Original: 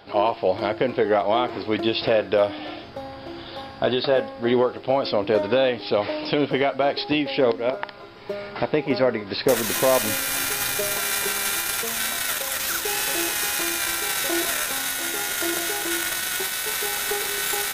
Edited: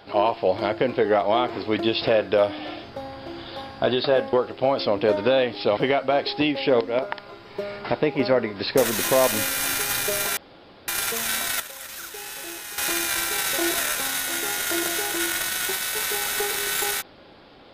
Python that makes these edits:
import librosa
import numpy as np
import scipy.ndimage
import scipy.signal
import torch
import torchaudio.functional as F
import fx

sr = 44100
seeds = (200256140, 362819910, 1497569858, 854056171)

y = fx.edit(x, sr, fx.cut(start_s=4.33, length_s=0.26),
    fx.cut(start_s=6.03, length_s=0.45),
    fx.room_tone_fill(start_s=11.08, length_s=0.51),
    fx.clip_gain(start_s=12.31, length_s=1.18, db=-11.0), tone=tone)